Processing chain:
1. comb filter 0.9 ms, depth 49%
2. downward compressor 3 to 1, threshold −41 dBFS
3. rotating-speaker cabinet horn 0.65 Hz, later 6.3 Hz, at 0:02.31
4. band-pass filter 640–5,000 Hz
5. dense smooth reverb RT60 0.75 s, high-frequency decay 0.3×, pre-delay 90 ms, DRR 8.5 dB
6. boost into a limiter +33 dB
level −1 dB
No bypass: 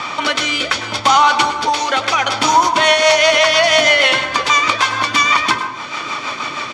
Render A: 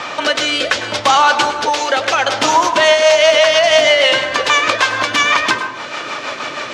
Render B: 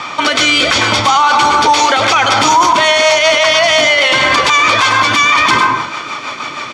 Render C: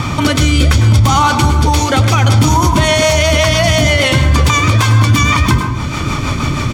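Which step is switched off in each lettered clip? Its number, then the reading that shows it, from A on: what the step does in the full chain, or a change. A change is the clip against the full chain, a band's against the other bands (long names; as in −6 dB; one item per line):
1, 500 Hz band +4.5 dB
2, average gain reduction 12.5 dB
4, 125 Hz band +28.0 dB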